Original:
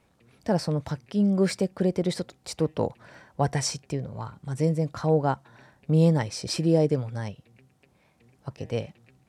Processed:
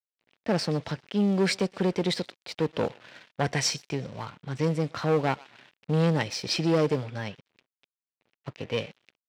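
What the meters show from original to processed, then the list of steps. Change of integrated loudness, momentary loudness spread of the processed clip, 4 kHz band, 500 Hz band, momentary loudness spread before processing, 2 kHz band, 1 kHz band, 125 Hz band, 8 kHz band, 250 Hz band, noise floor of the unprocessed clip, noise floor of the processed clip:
-1.5 dB, 14 LU, +4.5 dB, -1.5 dB, 15 LU, +6.0 dB, -0.5 dB, -3.5 dB, 0.0 dB, -2.0 dB, -65 dBFS, under -85 dBFS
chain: in parallel at -10 dB: hard clip -25 dBFS, distortion -7 dB; on the sum: low-pass opened by the level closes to 2400 Hz, open at -18 dBFS; on a send: thinning echo 0.124 s, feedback 41%, high-pass 610 Hz, level -21 dB; on the sum: tube stage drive 17 dB, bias 0.4; high shelf 2400 Hz -8 dB; crossover distortion -52.5 dBFS; weighting filter D; gain +2 dB

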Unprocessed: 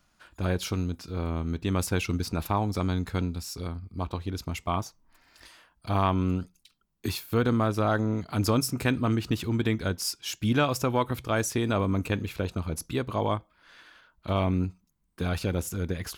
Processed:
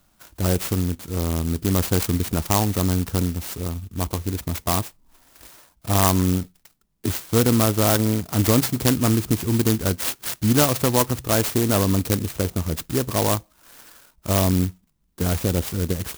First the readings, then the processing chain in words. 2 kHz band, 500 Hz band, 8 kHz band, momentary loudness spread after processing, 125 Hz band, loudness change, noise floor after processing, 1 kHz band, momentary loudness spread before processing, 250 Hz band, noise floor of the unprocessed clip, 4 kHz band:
+3.0 dB, +5.5 dB, +11.5 dB, 9 LU, +6.5 dB, +7.0 dB, -63 dBFS, +3.5 dB, 9 LU, +6.5 dB, -69 dBFS, +7.0 dB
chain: clock jitter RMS 0.14 ms; gain +6.5 dB

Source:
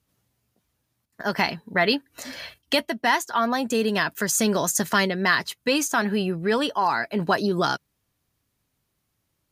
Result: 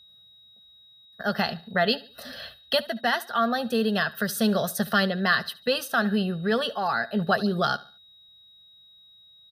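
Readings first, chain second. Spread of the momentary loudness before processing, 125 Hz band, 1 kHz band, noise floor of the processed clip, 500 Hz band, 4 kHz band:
6 LU, 0.0 dB, -3.0 dB, -55 dBFS, -1.5 dB, -1.0 dB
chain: fixed phaser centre 1500 Hz, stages 8; small resonant body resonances 230/1100 Hz, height 9 dB, ringing for 30 ms; whine 3800 Hz -51 dBFS; on a send: feedback echo 72 ms, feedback 36%, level -20 dB

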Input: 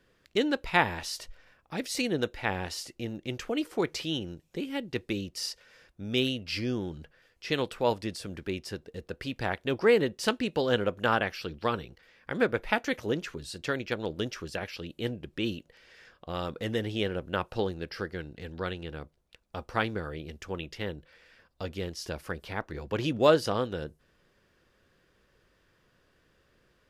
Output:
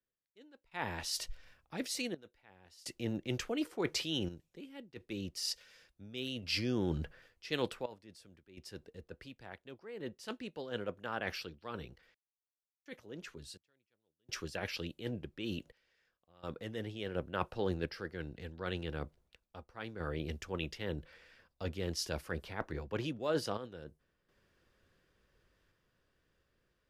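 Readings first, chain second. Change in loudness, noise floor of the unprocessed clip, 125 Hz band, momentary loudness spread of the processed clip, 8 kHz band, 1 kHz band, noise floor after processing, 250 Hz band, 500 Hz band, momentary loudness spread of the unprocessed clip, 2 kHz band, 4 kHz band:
-8.5 dB, -69 dBFS, -6.0 dB, 16 LU, -3.0 dB, -12.0 dB, under -85 dBFS, -8.0 dB, -11.0 dB, 14 LU, -11.0 dB, -6.0 dB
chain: reverse; compressor 6:1, threshold -38 dBFS, peak gain reduction 20.5 dB; reverse; random-step tremolo 1.4 Hz, depth 100%; three-band expander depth 40%; gain +5.5 dB

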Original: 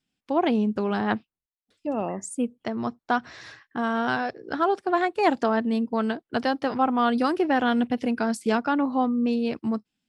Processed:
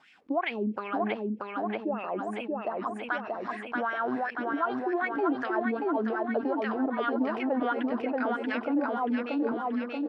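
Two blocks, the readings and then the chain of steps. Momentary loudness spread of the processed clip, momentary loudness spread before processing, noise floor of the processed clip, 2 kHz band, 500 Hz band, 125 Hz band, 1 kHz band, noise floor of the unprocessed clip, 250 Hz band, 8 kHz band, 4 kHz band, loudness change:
5 LU, 8 LU, -42 dBFS, -2.5 dB, -3.5 dB, n/a, -5.0 dB, under -85 dBFS, -5.0 dB, under -20 dB, -9.0 dB, -5.0 dB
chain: wah 2.6 Hz 270–2300 Hz, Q 4.6; feedback echo 0.632 s, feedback 51%, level -4 dB; fast leveller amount 50%

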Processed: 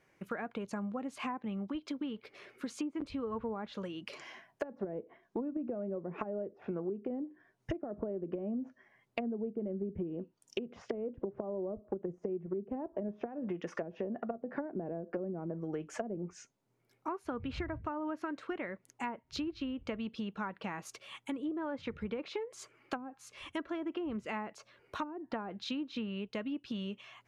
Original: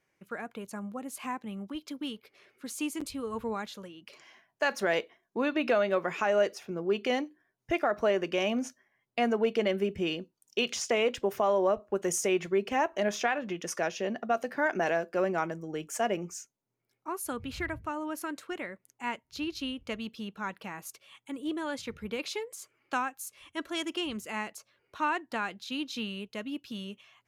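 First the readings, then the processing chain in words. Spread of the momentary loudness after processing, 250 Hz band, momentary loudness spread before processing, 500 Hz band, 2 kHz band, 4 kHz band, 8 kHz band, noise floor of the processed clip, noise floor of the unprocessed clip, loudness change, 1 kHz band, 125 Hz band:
6 LU, -2.5 dB, 13 LU, -9.0 dB, -12.5 dB, -11.0 dB, -16.5 dB, -74 dBFS, -80 dBFS, -8.0 dB, -10.0 dB, -1.0 dB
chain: treble ducked by the level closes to 310 Hz, closed at -26 dBFS; high shelf 2900 Hz -7 dB; compressor 4:1, threshold -45 dBFS, peak gain reduction 16 dB; gain +8.5 dB

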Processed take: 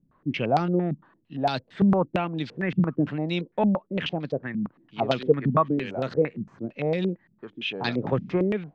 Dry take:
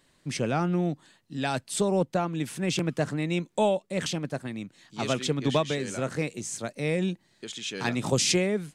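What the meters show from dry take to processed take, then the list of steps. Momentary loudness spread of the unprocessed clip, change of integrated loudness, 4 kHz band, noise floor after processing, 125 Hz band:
10 LU, +2.0 dB, -3.5 dB, -66 dBFS, +2.0 dB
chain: air absorption 130 m; stepped low-pass 8.8 Hz 200–4300 Hz

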